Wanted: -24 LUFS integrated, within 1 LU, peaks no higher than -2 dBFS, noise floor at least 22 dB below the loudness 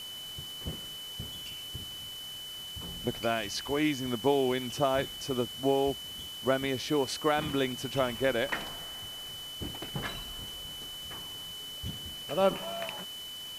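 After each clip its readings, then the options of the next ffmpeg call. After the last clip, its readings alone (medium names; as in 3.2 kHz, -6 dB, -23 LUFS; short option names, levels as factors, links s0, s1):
steady tone 3 kHz; tone level -40 dBFS; noise floor -42 dBFS; noise floor target -55 dBFS; loudness -32.5 LUFS; peak level -12.5 dBFS; loudness target -24.0 LUFS
-> -af "bandreject=f=3000:w=30"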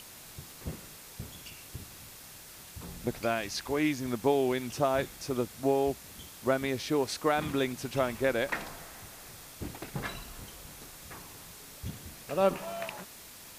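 steady tone not found; noise floor -49 dBFS; noise floor target -54 dBFS
-> -af "afftdn=nr=6:nf=-49"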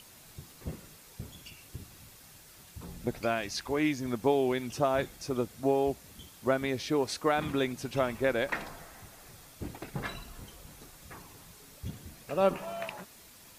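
noise floor -54 dBFS; loudness -31.5 LUFS; peak level -13.0 dBFS; loudness target -24.0 LUFS
-> -af "volume=2.37"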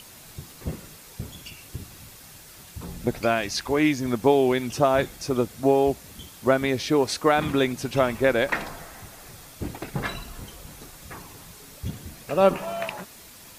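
loudness -24.0 LUFS; peak level -5.5 dBFS; noise floor -47 dBFS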